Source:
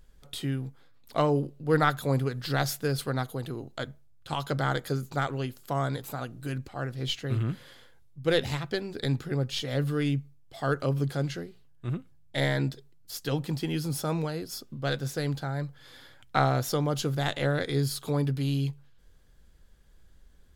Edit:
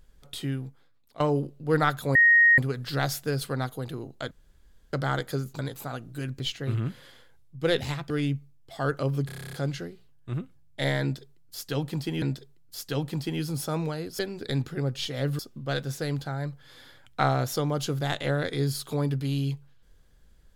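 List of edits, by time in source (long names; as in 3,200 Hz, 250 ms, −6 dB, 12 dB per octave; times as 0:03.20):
0:00.53–0:01.20: fade out, to −19 dB
0:02.15: insert tone 1,870 Hz −14 dBFS 0.43 s
0:03.88–0:04.50: fill with room tone
0:05.16–0:05.87: remove
0:06.68–0:07.03: remove
0:08.73–0:09.93: move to 0:14.55
0:11.09: stutter 0.03 s, 10 plays
0:12.58–0:13.78: repeat, 2 plays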